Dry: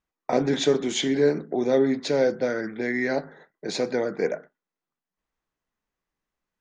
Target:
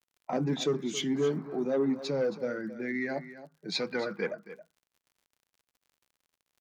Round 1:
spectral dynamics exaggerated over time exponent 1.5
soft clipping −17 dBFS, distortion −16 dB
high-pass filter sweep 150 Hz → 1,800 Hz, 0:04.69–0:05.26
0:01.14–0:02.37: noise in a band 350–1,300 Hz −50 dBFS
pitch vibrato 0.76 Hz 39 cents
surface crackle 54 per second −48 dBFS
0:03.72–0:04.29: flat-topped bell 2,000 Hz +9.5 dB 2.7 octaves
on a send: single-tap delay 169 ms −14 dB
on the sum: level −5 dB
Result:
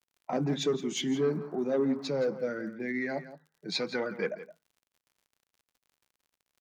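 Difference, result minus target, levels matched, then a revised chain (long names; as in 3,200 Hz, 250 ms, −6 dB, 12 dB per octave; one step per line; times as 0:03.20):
echo 103 ms early
spectral dynamics exaggerated over time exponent 1.5
soft clipping −17 dBFS, distortion −16 dB
high-pass filter sweep 150 Hz → 1,800 Hz, 0:04.69–0:05.26
0:01.14–0:02.37: noise in a band 350–1,300 Hz −50 dBFS
pitch vibrato 0.76 Hz 39 cents
surface crackle 54 per second −48 dBFS
0:03.72–0:04.29: flat-topped bell 2,000 Hz +9.5 dB 2.7 octaves
on a send: single-tap delay 272 ms −14 dB
on the sum: level −5 dB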